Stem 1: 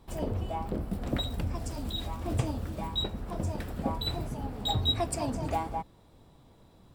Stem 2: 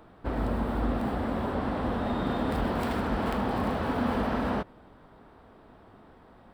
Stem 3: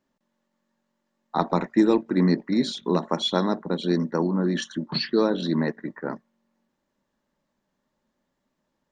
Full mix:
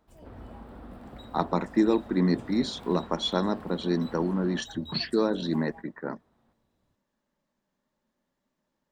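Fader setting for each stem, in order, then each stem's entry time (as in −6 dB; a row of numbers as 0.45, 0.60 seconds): −18.0, −17.0, −3.5 decibels; 0.00, 0.00, 0.00 seconds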